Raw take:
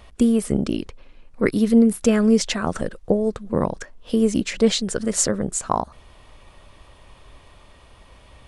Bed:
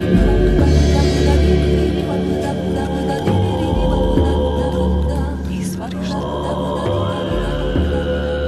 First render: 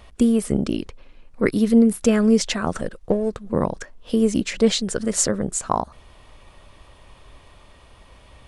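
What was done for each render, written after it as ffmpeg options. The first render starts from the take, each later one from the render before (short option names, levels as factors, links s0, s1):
-filter_complex "[0:a]asettb=1/sr,asplit=3[s0][s1][s2];[s0]atrim=end=2.784[s3];[s1]atrim=start=2.78:end=3.5,asetpts=PTS-STARTPTS,afade=t=in:d=0.004:c=qsin,afade=t=out:st=0.716:d=0.004:c=qsin,aeval=exprs='if(lt(val(0),0),0.708*val(0),val(0))':c=same[s4];[s2]atrim=start=3.496[s5];[s3][s4]acrossfade=d=0.004:c1=hsin:c2=qsin[s6];[s6][s5]acrossfade=d=0.004:c1=qsin:c2=hsin"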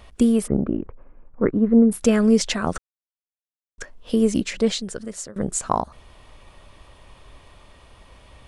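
-filter_complex "[0:a]asplit=3[s0][s1][s2];[s0]afade=t=out:st=0.46:d=0.02[s3];[s1]lowpass=f=1500:w=0.5412,lowpass=f=1500:w=1.3066,afade=t=in:st=0.46:d=0.02,afade=t=out:st=1.91:d=0.02[s4];[s2]afade=t=in:st=1.91:d=0.02[s5];[s3][s4][s5]amix=inputs=3:normalize=0,asplit=4[s6][s7][s8][s9];[s6]atrim=end=2.78,asetpts=PTS-STARTPTS,afade=t=out:st=2.776:d=0.004:c=hsin[s10];[s7]atrim=start=2.78:end=3.78,asetpts=PTS-STARTPTS,volume=0[s11];[s8]atrim=start=3.78:end=5.36,asetpts=PTS-STARTPTS,afade=t=in:d=0.004:c=hsin,afade=t=out:st=0.54:d=1.04:silence=0.0749894[s12];[s9]atrim=start=5.36,asetpts=PTS-STARTPTS,afade=t=in:d=0.004:c=hsin:silence=0.0749894[s13];[s10][s11][s12][s13]concat=n=4:v=0:a=1"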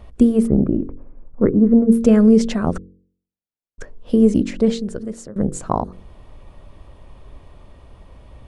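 -af "tiltshelf=f=880:g=7.5,bandreject=f=45.87:t=h:w=4,bandreject=f=91.74:t=h:w=4,bandreject=f=137.61:t=h:w=4,bandreject=f=183.48:t=h:w=4,bandreject=f=229.35:t=h:w=4,bandreject=f=275.22:t=h:w=4,bandreject=f=321.09:t=h:w=4,bandreject=f=366.96:t=h:w=4,bandreject=f=412.83:t=h:w=4,bandreject=f=458.7:t=h:w=4,bandreject=f=504.57:t=h:w=4"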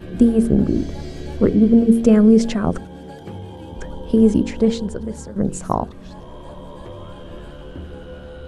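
-filter_complex "[1:a]volume=0.133[s0];[0:a][s0]amix=inputs=2:normalize=0"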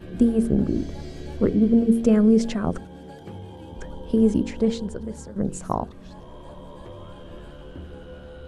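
-af "volume=0.562"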